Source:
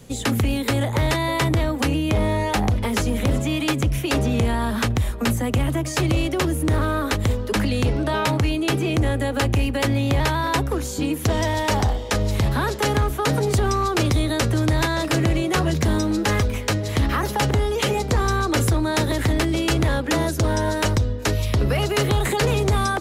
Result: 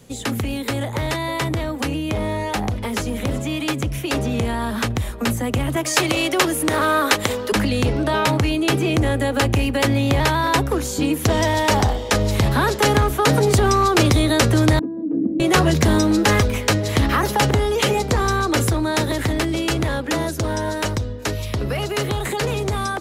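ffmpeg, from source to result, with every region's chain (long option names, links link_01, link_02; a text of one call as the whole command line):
ffmpeg -i in.wav -filter_complex "[0:a]asettb=1/sr,asplit=3[link_01][link_02][link_03];[link_01]atrim=end=5.764[link_04];[link_02]atrim=start=5.76:end=7.52,asetpts=PTS-STARTPTS,afade=type=in:duration=0.004:curve=qsin,afade=type=out:start_time=1.756:duration=0.004:curve=qsin,highpass=frequency=620:poles=1,acontrast=68[link_05];[link_03]atrim=start=7.516[link_06];[link_04][link_05]acrossfade=duration=0.004:curve1=hsin:curve2=qsin[link_07];[link_07][link_06]acrossfade=duration=0.004:curve1=qsin:curve2=hsin,asettb=1/sr,asplit=3[link_08][link_09][link_10];[link_08]atrim=end=14.794[link_11];[link_09]atrim=start=14.79:end=15.4,asetpts=PTS-STARTPTS,afade=type=in:duration=0.004:curve=qsin,afade=type=out:start_time=0.606:duration=0.004:curve=qsin,asuperpass=centerf=270:order=4:qfactor=2.1,aecho=1:1:4.2:0.44,atrim=end_sample=26901[link_12];[link_10]atrim=start=15.396[link_13];[link_11][link_12]acrossfade=duration=0.004:curve1=hsin:curve2=qsin[link_14];[link_14][link_13]acrossfade=duration=0.004:curve1=qsin:curve2=hsin,lowshelf=frequency=85:gain=-6.5,dynaudnorm=framelen=360:gausssize=31:maxgain=11.5dB,volume=-1.5dB" out.wav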